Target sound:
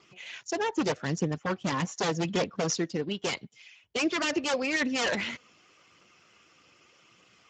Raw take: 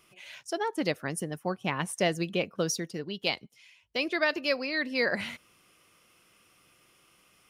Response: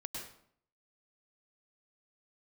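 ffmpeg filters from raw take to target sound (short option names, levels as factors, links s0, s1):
-af "aeval=exprs='0.0473*(abs(mod(val(0)/0.0473+3,4)-2)-1)':c=same,aphaser=in_gain=1:out_gain=1:delay=4.2:decay=0.28:speed=0.83:type=triangular,volume=1.68" -ar 16000 -c:a libspeex -b:a 13k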